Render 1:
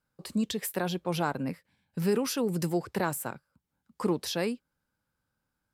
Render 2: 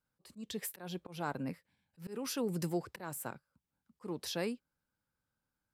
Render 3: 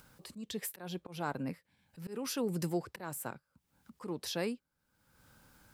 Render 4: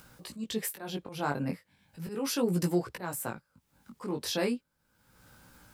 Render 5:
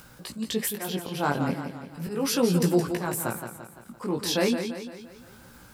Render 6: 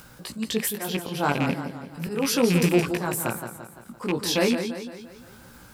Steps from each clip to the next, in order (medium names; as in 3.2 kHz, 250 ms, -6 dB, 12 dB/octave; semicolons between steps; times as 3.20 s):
slow attack 233 ms; trim -6 dB
upward compressor, threshold -43 dBFS; trim +1 dB
chorus 0.36 Hz, delay 16.5 ms, depth 4.8 ms; trim +8.5 dB
modulated delay 171 ms, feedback 50%, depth 91 cents, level -8 dB; trim +5.5 dB
rattle on loud lows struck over -29 dBFS, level -21 dBFS; trim +2 dB